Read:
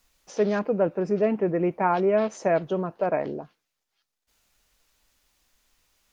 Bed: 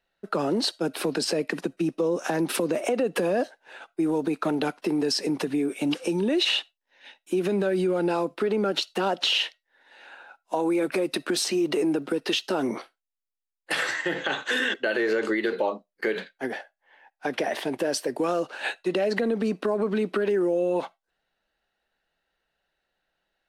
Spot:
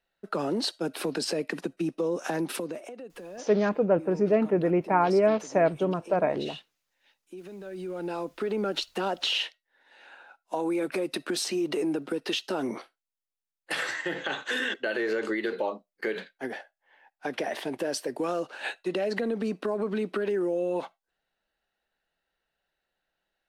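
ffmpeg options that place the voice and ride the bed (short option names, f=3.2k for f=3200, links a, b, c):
-filter_complex "[0:a]adelay=3100,volume=0dB[a];[1:a]volume=10.5dB,afade=t=out:st=2.36:d=0.55:silence=0.188365,afade=t=in:st=7.6:d=0.99:silence=0.199526[b];[a][b]amix=inputs=2:normalize=0"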